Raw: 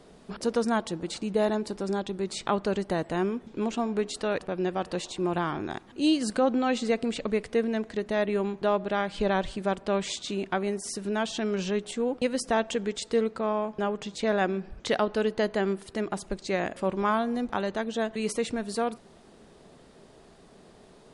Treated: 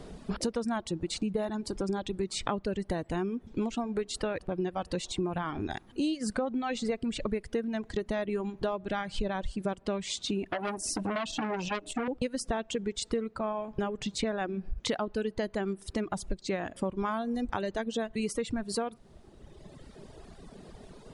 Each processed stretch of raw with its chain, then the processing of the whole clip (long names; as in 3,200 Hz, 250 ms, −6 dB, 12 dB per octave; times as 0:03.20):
0:10.51–0:12.08: hollow resonant body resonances 300/620/2,600 Hz, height 17 dB, ringing for 95 ms + saturating transformer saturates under 2,200 Hz
whole clip: reverb reduction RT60 1.8 s; low-shelf EQ 150 Hz +11.5 dB; downward compressor, threshold −33 dBFS; level +4.5 dB